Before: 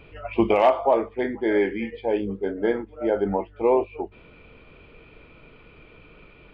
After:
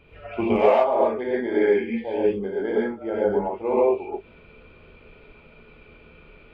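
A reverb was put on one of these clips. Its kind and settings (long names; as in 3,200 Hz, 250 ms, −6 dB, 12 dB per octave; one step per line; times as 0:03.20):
reverb whose tail is shaped and stops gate 160 ms rising, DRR −6 dB
level −7 dB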